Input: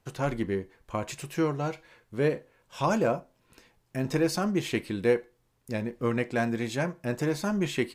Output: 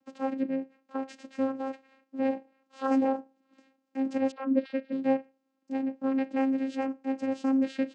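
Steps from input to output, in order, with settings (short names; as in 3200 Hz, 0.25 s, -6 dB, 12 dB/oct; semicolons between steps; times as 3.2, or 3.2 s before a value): 4.31–4.92 sine-wave speech; vocoder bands 8, saw 267 Hz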